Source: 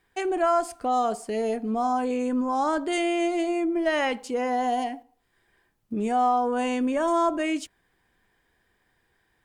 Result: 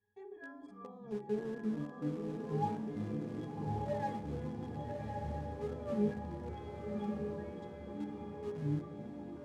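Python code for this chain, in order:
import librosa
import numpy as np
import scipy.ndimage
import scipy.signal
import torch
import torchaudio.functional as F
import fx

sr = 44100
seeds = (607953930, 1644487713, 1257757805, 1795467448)

p1 = fx.level_steps(x, sr, step_db=19)
p2 = fx.ring_mod(p1, sr, carrier_hz=1800.0, at=(6.49, 7.3))
p3 = fx.dynamic_eq(p2, sr, hz=580.0, q=0.82, threshold_db=-51.0, ratio=4.0, max_db=5)
p4 = fx.octave_resonator(p3, sr, note='G#', decay_s=0.28)
p5 = fx.room_shoebox(p4, sr, seeds[0], volume_m3=2300.0, walls='furnished', distance_m=0.79)
p6 = fx.echo_pitch(p5, sr, ms=186, semitones=-6, count=3, db_per_echo=-3.0)
p7 = np.where(np.abs(p6) >= 10.0 ** (-48.0 / 20.0), p6, 0.0)
p8 = p6 + F.gain(torch.from_numpy(p7), -10.5).numpy()
p9 = scipy.signal.sosfilt(scipy.signal.butter(2, 9100.0, 'lowpass', fs=sr, output='sos'), p8)
p10 = fx.echo_diffused(p9, sr, ms=1176, feedback_pct=51, wet_db=-3.0)
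y = F.gain(torch.from_numpy(p10), 8.0).numpy()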